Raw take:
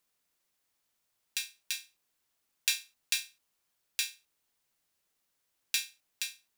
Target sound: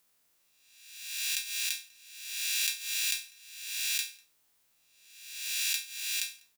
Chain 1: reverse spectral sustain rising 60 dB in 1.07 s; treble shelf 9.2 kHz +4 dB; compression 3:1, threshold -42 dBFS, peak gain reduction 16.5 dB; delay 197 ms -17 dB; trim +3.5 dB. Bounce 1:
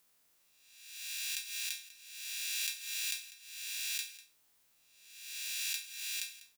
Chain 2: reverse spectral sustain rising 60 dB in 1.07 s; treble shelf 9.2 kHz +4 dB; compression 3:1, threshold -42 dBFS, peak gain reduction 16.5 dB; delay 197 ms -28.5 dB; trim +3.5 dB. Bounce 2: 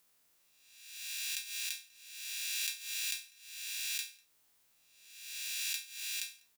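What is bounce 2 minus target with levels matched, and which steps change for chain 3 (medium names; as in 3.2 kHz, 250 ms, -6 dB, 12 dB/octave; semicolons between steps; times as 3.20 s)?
compression: peak gain reduction +6 dB
change: compression 3:1, threshold -33 dBFS, peak gain reduction 10.5 dB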